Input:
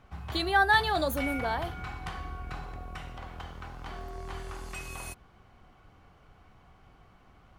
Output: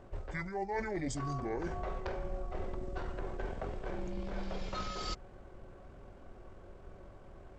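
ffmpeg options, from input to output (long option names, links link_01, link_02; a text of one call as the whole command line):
ffmpeg -i in.wav -af "areverse,acompressor=threshold=-39dB:ratio=20,areverse,asetrate=22050,aresample=44100,atempo=2,volume=6.5dB" out.wav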